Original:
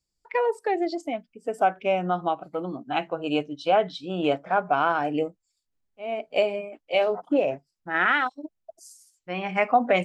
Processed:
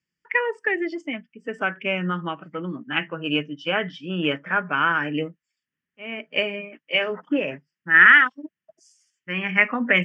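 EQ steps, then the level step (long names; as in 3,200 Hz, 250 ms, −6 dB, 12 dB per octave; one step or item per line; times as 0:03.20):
loudspeaker in its box 150–4,700 Hz, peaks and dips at 160 Hz +8 dB, 230 Hz +3 dB, 670 Hz +8 dB, 1,800 Hz +10 dB, 3,000 Hz +7 dB
high-shelf EQ 3,100 Hz +10 dB
phaser with its sweep stopped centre 1,700 Hz, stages 4
+2.5 dB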